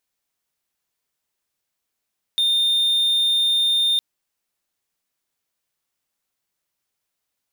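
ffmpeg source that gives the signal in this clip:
-f lavfi -i "aevalsrc='0.2*(1-4*abs(mod(3630*t+0.25,1)-0.5))':d=1.61:s=44100"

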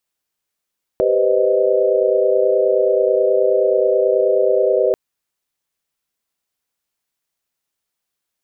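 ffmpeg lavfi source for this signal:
-f lavfi -i "aevalsrc='0.126*(sin(2*PI*392*t)+sin(2*PI*493.88*t)+sin(2*PI*523.25*t)+sin(2*PI*622.25*t))':d=3.94:s=44100"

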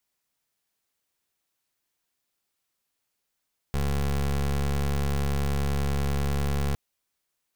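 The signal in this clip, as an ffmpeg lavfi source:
-f lavfi -i "aevalsrc='0.0531*(2*lt(mod(70.3*t,1),0.23)-1)':d=3.01:s=44100"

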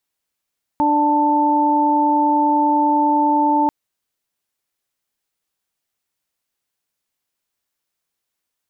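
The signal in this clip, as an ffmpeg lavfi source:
-f lavfi -i "aevalsrc='0.126*sin(2*PI*295*t)+0.0473*sin(2*PI*590*t)+0.188*sin(2*PI*885*t)':d=2.89:s=44100"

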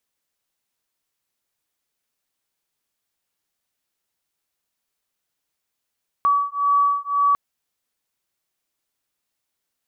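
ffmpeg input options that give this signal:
-f lavfi -i "aevalsrc='0.106*(sin(2*PI*1140*t)+sin(2*PI*1141.9*t))':d=1.1:s=44100"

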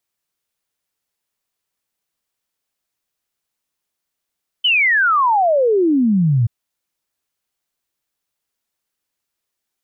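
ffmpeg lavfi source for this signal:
-f lavfi -i "aevalsrc='0.266*clip(min(t,1.83-t)/0.01,0,1)*sin(2*PI*3100*1.83/log(110/3100)*(exp(log(110/3100)*t/1.83)-1))':d=1.83:s=44100"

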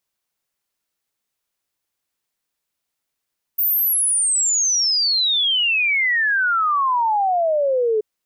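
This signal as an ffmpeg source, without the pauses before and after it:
-f lavfi -i "aevalsrc='0.168*clip(min(t,4.43-t)/0.01,0,1)*sin(2*PI*15000*4.43/log(420/15000)*(exp(log(420/15000)*t/4.43)-1))':d=4.43:s=44100"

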